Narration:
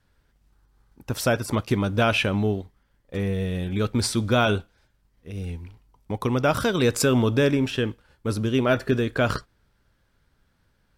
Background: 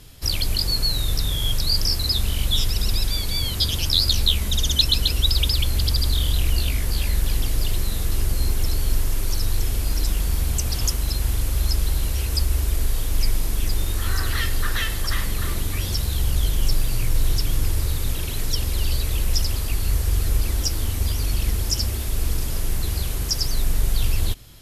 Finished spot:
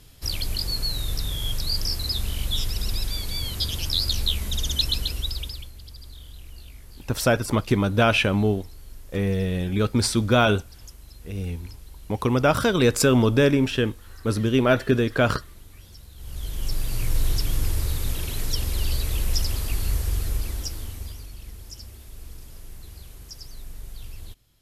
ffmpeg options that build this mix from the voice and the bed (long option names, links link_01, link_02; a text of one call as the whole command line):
ffmpeg -i stem1.wav -i stem2.wav -filter_complex "[0:a]adelay=6000,volume=2dB[link_01];[1:a]volume=14.5dB,afade=type=out:start_time=4.89:duration=0.83:silence=0.141254,afade=type=in:start_time=16.16:duration=0.96:silence=0.105925,afade=type=out:start_time=19.8:duration=1.5:silence=0.16788[link_02];[link_01][link_02]amix=inputs=2:normalize=0" out.wav